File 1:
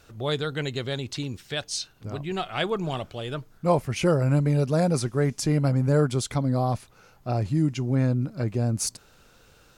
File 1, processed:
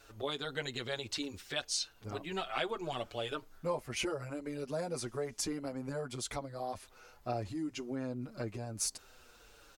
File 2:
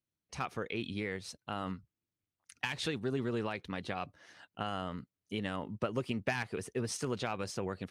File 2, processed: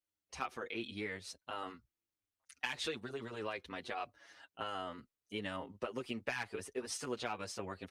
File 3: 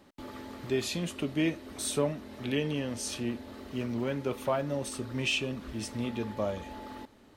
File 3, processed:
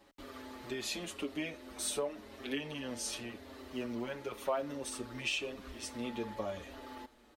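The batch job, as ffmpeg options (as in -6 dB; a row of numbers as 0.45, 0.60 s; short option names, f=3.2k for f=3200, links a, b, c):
-filter_complex "[0:a]acompressor=threshold=-28dB:ratio=5,equalizer=f=140:t=o:w=1.4:g=-13,asplit=2[a][b];[b]adelay=6.8,afreqshift=-0.93[c];[a][c]amix=inputs=2:normalize=1,volume=1dB"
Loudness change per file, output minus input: -12.5, -4.5, -6.5 LU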